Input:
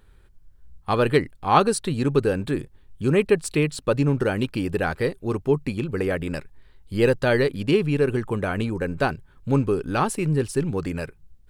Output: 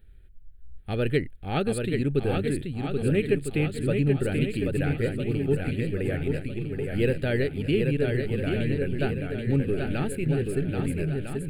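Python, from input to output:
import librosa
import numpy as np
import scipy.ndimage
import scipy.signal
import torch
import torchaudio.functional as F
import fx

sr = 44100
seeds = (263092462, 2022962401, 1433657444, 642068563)

y = fx.low_shelf(x, sr, hz=87.0, db=9.0)
y = fx.fixed_phaser(y, sr, hz=2500.0, stages=4)
y = fx.echo_swing(y, sr, ms=1303, ratio=1.5, feedback_pct=39, wet_db=-4.5)
y = y * librosa.db_to_amplitude(-4.5)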